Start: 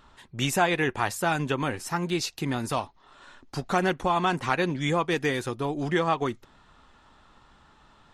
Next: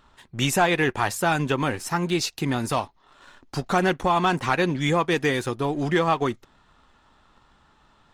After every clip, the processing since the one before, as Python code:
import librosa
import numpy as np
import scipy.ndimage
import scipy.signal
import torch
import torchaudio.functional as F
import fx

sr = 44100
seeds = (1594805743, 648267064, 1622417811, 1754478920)

y = fx.leveller(x, sr, passes=1)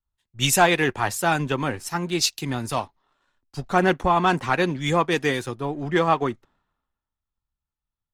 y = fx.band_widen(x, sr, depth_pct=100)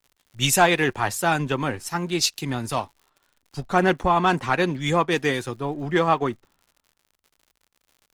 y = fx.dmg_crackle(x, sr, seeds[0], per_s=99.0, level_db=-44.0)